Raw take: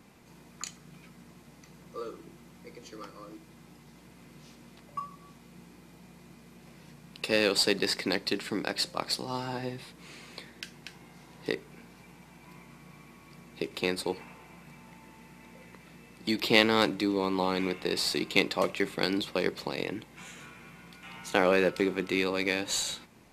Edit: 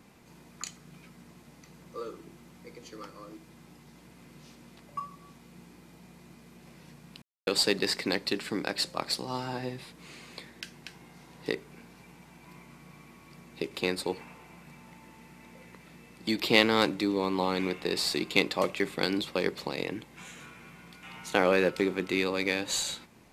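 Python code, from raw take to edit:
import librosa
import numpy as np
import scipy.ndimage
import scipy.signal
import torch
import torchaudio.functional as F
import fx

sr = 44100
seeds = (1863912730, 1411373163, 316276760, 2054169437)

y = fx.edit(x, sr, fx.silence(start_s=7.22, length_s=0.25), tone=tone)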